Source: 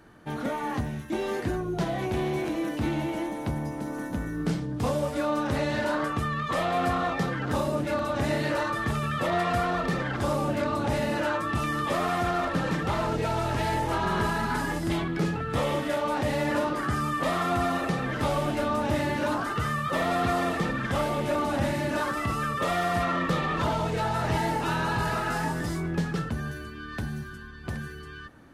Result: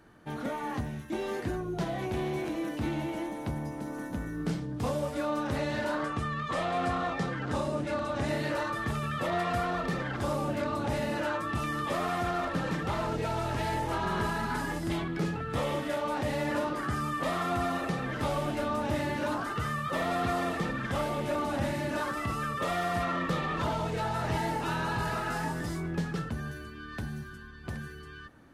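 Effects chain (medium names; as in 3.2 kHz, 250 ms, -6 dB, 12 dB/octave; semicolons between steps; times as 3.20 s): 6.03–8.28 s: low-pass 10 kHz 24 dB/octave; trim -4 dB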